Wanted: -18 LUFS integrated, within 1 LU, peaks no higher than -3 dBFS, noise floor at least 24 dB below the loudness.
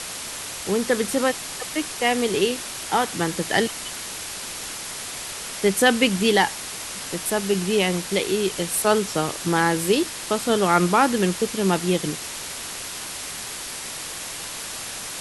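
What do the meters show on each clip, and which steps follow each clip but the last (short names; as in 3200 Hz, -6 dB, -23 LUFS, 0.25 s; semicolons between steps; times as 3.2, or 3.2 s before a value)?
noise floor -34 dBFS; noise floor target -48 dBFS; loudness -23.5 LUFS; peak -3.5 dBFS; loudness target -18.0 LUFS
-> denoiser 14 dB, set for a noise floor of -34 dBFS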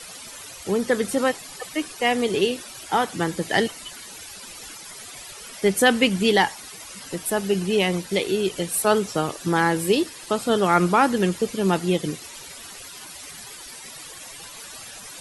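noise floor -40 dBFS; noise floor target -47 dBFS
-> denoiser 7 dB, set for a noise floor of -40 dBFS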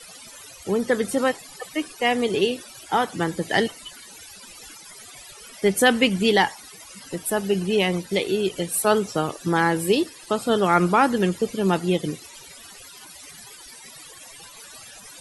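noise floor -44 dBFS; noise floor target -47 dBFS
-> denoiser 6 dB, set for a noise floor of -44 dBFS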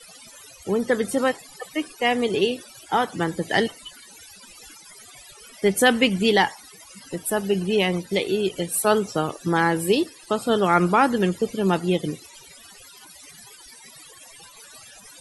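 noise floor -47 dBFS; loudness -22.5 LUFS; peak -4.0 dBFS; loudness target -18.0 LUFS
-> gain +4.5 dB; limiter -3 dBFS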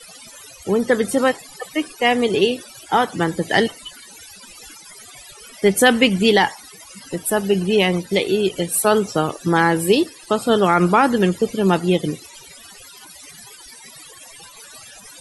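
loudness -18.5 LUFS; peak -3.0 dBFS; noise floor -43 dBFS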